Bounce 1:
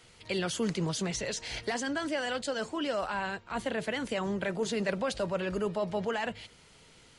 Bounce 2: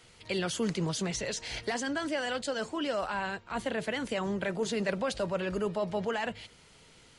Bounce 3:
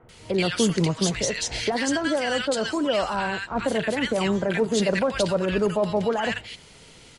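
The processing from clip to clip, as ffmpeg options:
ffmpeg -i in.wav -af anull out.wav
ffmpeg -i in.wav -filter_complex "[0:a]acrossover=split=1300[link_01][link_02];[link_02]adelay=90[link_03];[link_01][link_03]amix=inputs=2:normalize=0,volume=9dB" out.wav

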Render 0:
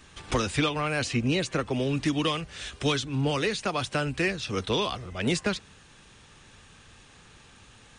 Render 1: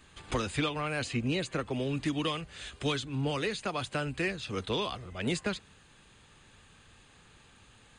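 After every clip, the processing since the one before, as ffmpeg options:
ffmpeg -i in.wav -af "bandreject=frequency=5600:width=5.2,volume=-5dB" out.wav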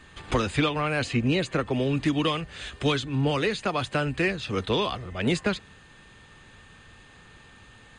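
ffmpeg -i in.wav -af "highshelf=frequency=6500:gain=-9.5,aeval=exprs='val(0)+0.000708*sin(2*PI*1800*n/s)':channel_layout=same,volume=7dB" out.wav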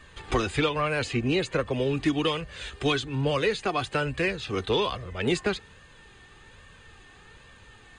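ffmpeg -i in.wav -af "flanger=delay=1.7:depth=1.1:regen=39:speed=1.2:shape=triangular,volume=3.5dB" out.wav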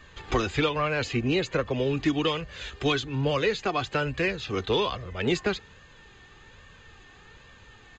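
ffmpeg -i in.wav -af "aresample=16000,aresample=44100" out.wav

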